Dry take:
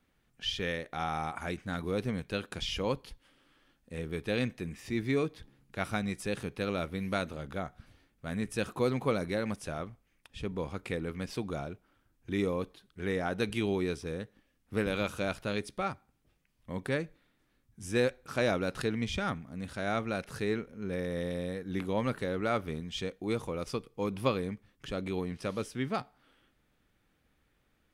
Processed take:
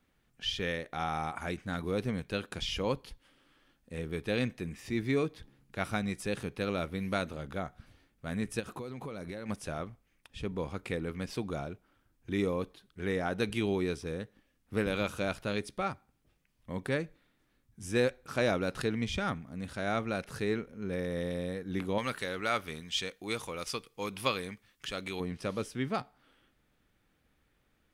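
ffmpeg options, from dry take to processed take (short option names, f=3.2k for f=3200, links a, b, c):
-filter_complex "[0:a]asplit=3[a][b][c];[a]afade=t=out:st=8.59:d=0.02[d];[b]acompressor=threshold=-36dB:ratio=16:attack=3.2:release=140:knee=1:detection=peak,afade=t=in:st=8.59:d=0.02,afade=t=out:st=9.48:d=0.02[e];[c]afade=t=in:st=9.48:d=0.02[f];[d][e][f]amix=inputs=3:normalize=0,asettb=1/sr,asplit=3[g][h][i];[g]atrim=end=21.984[j];[h]atrim=start=21.98:end=25.2,asetpts=PTS-STARTPTS,afade=t=in:d=0.004:c=qsin,afade=t=out:st=3.216:d=0.004:c=qsin,tiltshelf=f=970:g=-7.5[k];[i]atrim=start=25.196[l];[j][k]acrossfade=d=0.004:c1=hsin:c2=qsin[m];[m][l]acrossfade=d=0.004:c1=qsin:c2=hsin"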